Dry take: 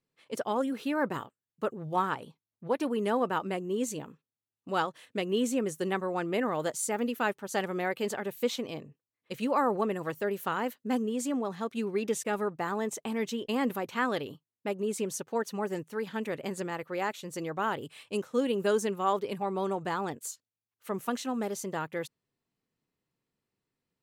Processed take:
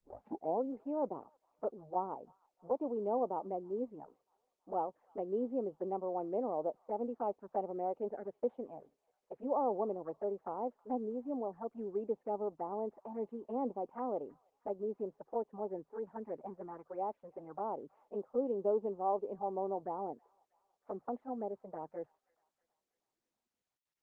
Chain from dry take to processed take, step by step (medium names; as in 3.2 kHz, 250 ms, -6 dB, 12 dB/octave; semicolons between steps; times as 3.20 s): tape start-up on the opening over 0.64 s; three-band isolator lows -23 dB, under 200 Hz, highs -23 dB, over 2.3 kHz; touch-sensitive flanger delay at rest 8.8 ms, full sweep at -29 dBFS; low-pass sweep 770 Hz -> 160 Hz, 22.62–23.80 s; feedback echo behind a high-pass 320 ms, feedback 53%, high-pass 2.2 kHz, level -15 dB; trim -7 dB; Opus 32 kbps 48 kHz